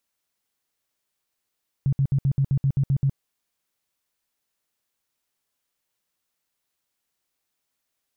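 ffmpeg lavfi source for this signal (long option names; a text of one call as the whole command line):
ffmpeg -f lavfi -i "aevalsrc='0.141*sin(2*PI*137*mod(t,0.13))*lt(mod(t,0.13),9/137)':duration=1.3:sample_rate=44100" out.wav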